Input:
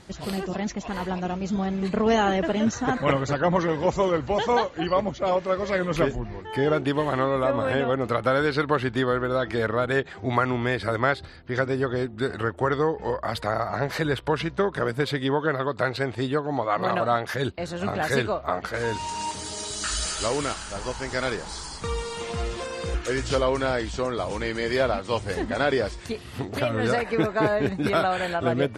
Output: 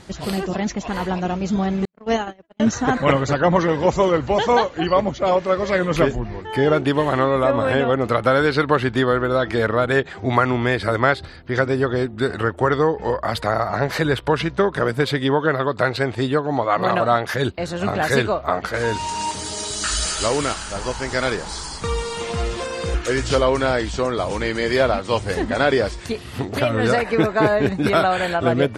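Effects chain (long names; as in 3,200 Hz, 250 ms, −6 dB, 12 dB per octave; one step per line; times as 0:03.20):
0:01.85–0:02.60: noise gate −18 dBFS, range −59 dB
level +5.5 dB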